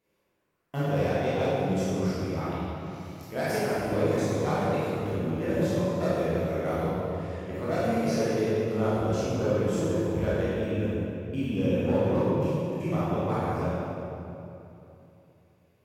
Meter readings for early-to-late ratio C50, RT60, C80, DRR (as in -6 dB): -5.5 dB, 2.9 s, -3.0 dB, -10.5 dB